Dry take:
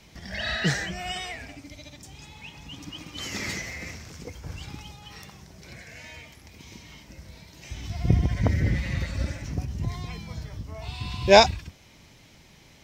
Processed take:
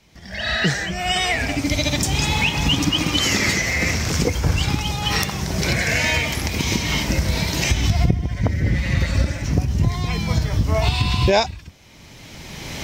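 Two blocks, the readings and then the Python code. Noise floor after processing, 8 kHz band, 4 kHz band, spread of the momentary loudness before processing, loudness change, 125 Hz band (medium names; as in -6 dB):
-43 dBFS, +14.0 dB, +10.5 dB, 20 LU, +6.0 dB, +9.5 dB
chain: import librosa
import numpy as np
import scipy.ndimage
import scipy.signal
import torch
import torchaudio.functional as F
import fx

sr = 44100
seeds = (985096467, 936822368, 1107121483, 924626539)

y = fx.recorder_agc(x, sr, target_db=-5.5, rise_db_per_s=20.0, max_gain_db=30)
y = y * librosa.db_to_amplitude(-3.5)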